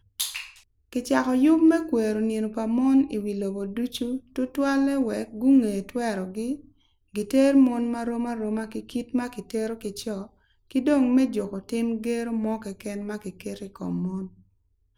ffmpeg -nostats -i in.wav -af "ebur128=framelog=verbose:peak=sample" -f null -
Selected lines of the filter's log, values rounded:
Integrated loudness:
  I:         -25.2 LUFS
  Threshold: -35.7 LUFS
Loudness range:
  LRA:         5.4 LU
  Threshold: -45.6 LUFS
  LRA low:   -28.8 LUFS
  LRA high:  -23.4 LUFS
Sample peak:
  Peak:       -7.5 dBFS